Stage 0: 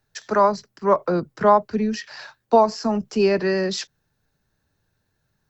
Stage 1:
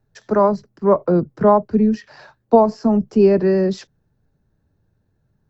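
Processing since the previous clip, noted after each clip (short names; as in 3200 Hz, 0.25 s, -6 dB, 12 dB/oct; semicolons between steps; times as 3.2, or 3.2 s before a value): tilt shelf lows +9.5 dB; gain -1 dB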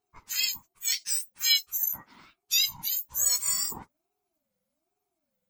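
spectrum mirrored in octaves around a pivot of 1700 Hz; ring modulator with a swept carrier 460 Hz, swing 25%, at 1.2 Hz; gain -4 dB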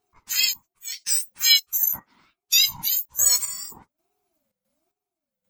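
step gate "x.xx....xxx" 113 bpm -12 dB; gain +6.5 dB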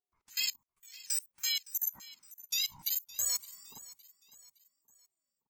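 level quantiser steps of 23 dB; feedback echo 0.564 s, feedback 42%, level -19 dB; gain -8 dB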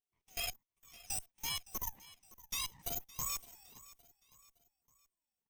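minimum comb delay 0.34 ms; gain -4.5 dB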